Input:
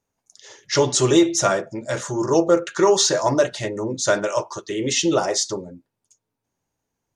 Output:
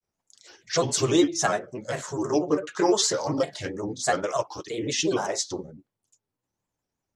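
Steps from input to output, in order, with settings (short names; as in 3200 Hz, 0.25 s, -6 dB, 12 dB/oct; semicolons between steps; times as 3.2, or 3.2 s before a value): grains, spray 21 ms, pitch spread up and down by 3 st; gain -4 dB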